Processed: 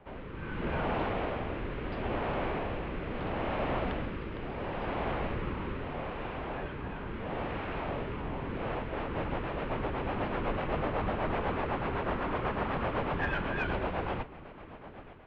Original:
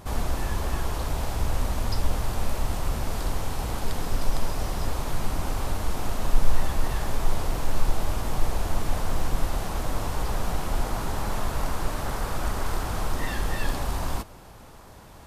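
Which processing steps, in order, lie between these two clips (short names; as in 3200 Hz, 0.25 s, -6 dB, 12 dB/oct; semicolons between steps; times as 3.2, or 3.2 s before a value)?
AGC gain up to 10 dB; rotary speaker horn 0.75 Hz, later 8 Hz, at 8.48; mistuned SSB -200 Hz 170–3000 Hz; added harmonics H 5 -29 dB, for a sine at -13.5 dBFS; gain -5 dB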